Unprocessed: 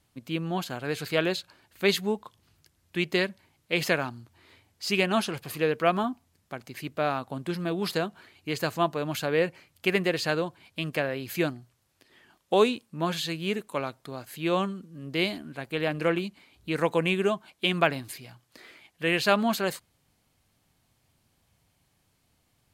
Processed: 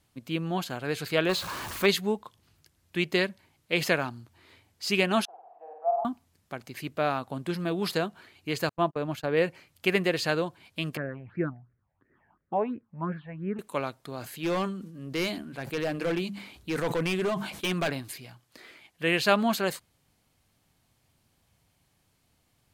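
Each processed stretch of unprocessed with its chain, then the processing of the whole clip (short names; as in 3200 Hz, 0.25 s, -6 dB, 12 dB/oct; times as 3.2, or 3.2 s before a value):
1.29–1.86 zero-crossing step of -33 dBFS + bell 1100 Hz +10.5 dB 0.49 oct
5.25–6.05 Butterworth band-pass 750 Hz, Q 4.8 + flutter echo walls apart 8.5 m, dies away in 0.93 s
8.69–9.37 gate -34 dBFS, range -41 dB + high shelf 2300 Hz -8.5 dB
10.97–13.59 LPF 1500 Hz 24 dB/oct + phaser stages 6, 2.9 Hz, lowest notch 320–1000 Hz
14.16–17.9 notches 50/100/150/200 Hz + overloaded stage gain 24 dB + sustainer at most 66 dB/s
whole clip: dry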